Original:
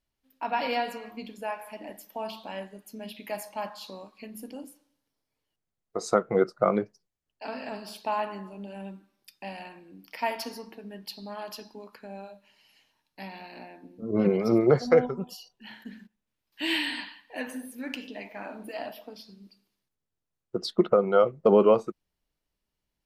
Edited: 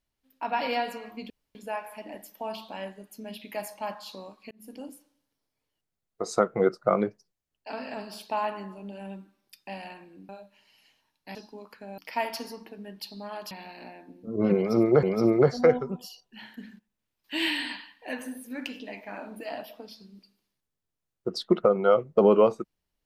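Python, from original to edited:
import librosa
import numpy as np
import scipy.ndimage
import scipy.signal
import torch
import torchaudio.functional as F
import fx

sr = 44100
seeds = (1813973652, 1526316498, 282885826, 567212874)

y = fx.edit(x, sr, fx.insert_room_tone(at_s=1.3, length_s=0.25),
    fx.fade_in_span(start_s=4.26, length_s=0.29),
    fx.swap(start_s=10.04, length_s=1.53, other_s=12.2, other_length_s=1.06),
    fx.repeat(start_s=14.31, length_s=0.47, count=2), tone=tone)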